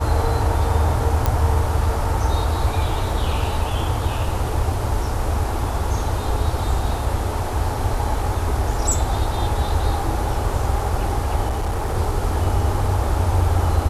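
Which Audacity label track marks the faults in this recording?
1.260000	1.260000	click −5 dBFS
11.480000	11.950000	clipping −18.5 dBFS

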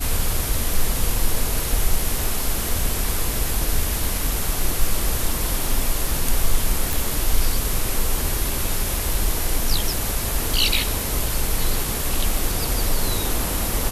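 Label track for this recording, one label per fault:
6.930000	6.930000	click

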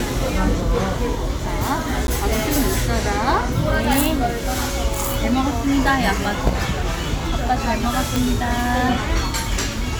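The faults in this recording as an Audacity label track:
2.070000	2.080000	drop-out 11 ms
8.160000	8.160000	click

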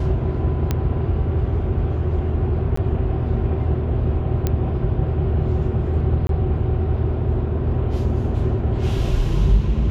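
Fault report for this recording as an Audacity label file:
0.710000	0.710000	click −8 dBFS
2.760000	2.770000	drop-out 14 ms
4.470000	4.470000	click −8 dBFS
6.270000	6.290000	drop-out 22 ms

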